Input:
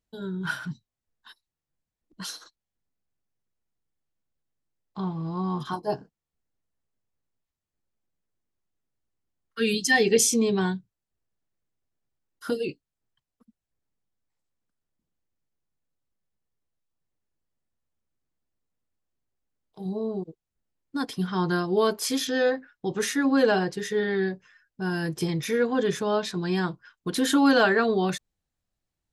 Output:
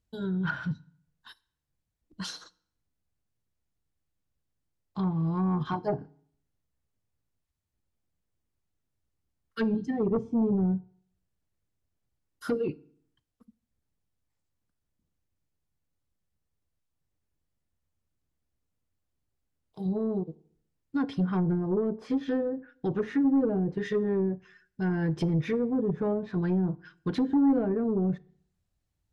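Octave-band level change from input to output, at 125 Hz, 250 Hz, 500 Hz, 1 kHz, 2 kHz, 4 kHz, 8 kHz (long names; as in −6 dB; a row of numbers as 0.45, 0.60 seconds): +2.5 dB, 0.0 dB, −5.0 dB, −8.5 dB, −13.0 dB, −15.0 dB, below −20 dB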